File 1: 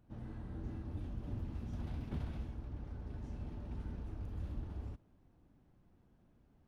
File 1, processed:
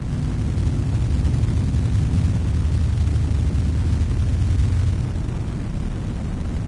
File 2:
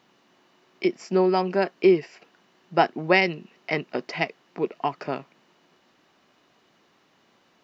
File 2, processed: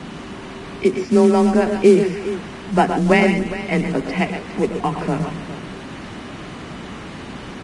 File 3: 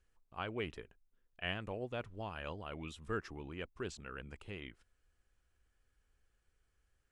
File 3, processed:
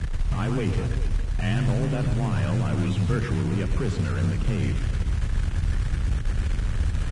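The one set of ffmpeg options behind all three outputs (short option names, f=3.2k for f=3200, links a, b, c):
-filter_complex "[0:a]aeval=exprs='val(0)+0.5*0.0224*sgn(val(0))':c=same,bass=f=250:g=14,treble=f=4k:g=-12,aecho=1:1:118|138|285|410:0.355|0.224|0.106|0.211,afreqshift=23,acrossover=split=2000[a][b];[a]acrusher=bits=6:mode=log:mix=0:aa=0.000001[c];[c][b]amix=inputs=2:normalize=0,volume=2dB" -ar 22050 -c:a libvorbis -b:a 32k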